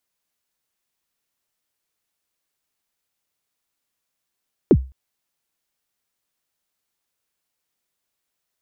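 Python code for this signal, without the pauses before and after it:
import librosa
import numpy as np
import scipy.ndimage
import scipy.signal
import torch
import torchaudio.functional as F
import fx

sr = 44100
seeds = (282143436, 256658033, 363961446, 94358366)

y = fx.drum_kick(sr, seeds[0], length_s=0.21, level_db=-5.0, start_hz=460.0, end_hz=65.0, sweep_ms=57.0, decay_s=0.31, click=False)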